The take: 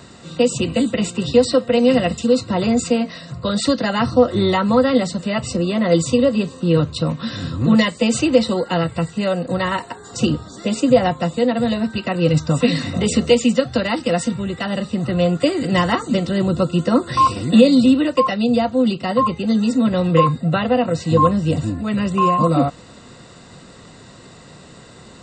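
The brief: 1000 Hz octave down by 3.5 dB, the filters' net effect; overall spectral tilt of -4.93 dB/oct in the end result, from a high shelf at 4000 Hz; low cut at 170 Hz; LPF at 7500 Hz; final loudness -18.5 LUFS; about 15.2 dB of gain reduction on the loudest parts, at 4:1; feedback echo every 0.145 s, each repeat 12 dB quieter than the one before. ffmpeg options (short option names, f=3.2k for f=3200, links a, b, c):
-af "highpass=170,lowpass=7.5k,equalizer=f=1k:t=o:g=-4.5,highshelf=f=4k:g=4.5,acompressor=threshold=-27dB:ratio=4,aecho=1:1:145|290|435:0.251|0.0628|0.0157,volume=10.5dB"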